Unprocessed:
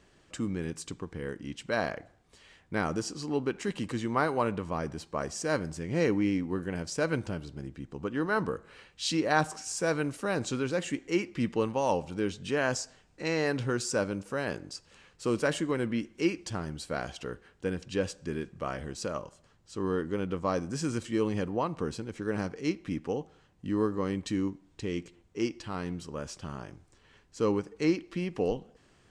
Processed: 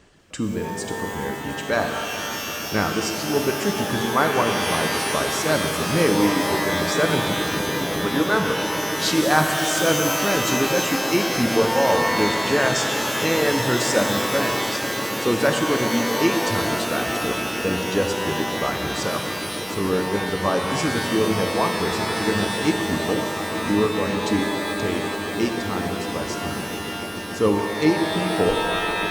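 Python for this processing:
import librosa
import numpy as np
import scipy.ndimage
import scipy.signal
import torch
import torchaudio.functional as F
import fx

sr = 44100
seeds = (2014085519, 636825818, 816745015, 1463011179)

y = fx.echo_swell(x, sr, ms=145, loudest=8, wet_db=-16.5)
y = fx.dereverb_blind(y, sr, rt60_s=1.7)
y = fx.rev_shimmer(y, sr, seeds[0], rt60_s=3.2, semitones=12, shimmer_db=-2, drr_db=3.5)
y = F.gain(torch.from_numpy(y), 7.5).numpy()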